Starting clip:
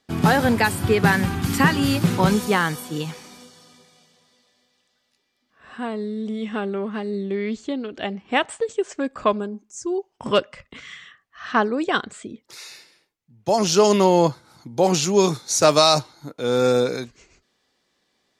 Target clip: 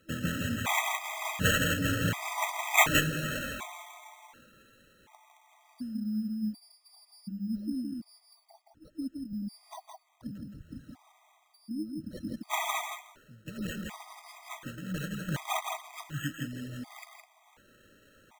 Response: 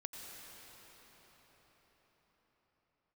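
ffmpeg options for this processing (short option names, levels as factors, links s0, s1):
-filter_complex "[0:a]areverse,acompressor=threshold=0.0447:ratio=10,areverse,bandreject=f=81.74:t=h:w=4,bandreject=f=163.48:t=h:w=4,acrossover=split=150[s0][s1];[s1]acompressor=threshold=0.0141:ratio=6[s2];[s0][s2]amix=inputs=2:normalize=0,aemphasis=mode=production:type=75fm,asplit=2[s3][s4];[s4]aecho=0:1:165:0.631[s5];[s3][s5]amix=inputs=2:normalize=0,afftfilt=real='re*(1-between(b*sr/4096,330,9800))':imag='im*(1-between(b*sr/4096,330,9800))':win_size=4096:overlap=0.75,tiltshelf=f=970:g=-4.5,acrusher=samples=9:mix=1:aa=0.000001,afftfilt=real='re*gt(sin(2*PI*0.68*pts/sr)*(1-2*mod(floor(b*sr/1024/640),2)),0)':imag='im*gt(sin(2*PI*0.68*pts/sr)*(1-2*mod(floor(b*sr/1024/640),2)),0)':win_size=1024:overlap=0.75,volume=2.82"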